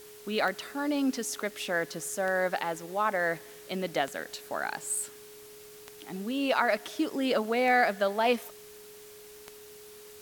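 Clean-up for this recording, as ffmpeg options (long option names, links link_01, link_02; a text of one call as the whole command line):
ffmpeg -i in.wav -af "adeclick=threshold=4,bandreject=frequency=420:width=30,afwtdn=0.0025" out.wav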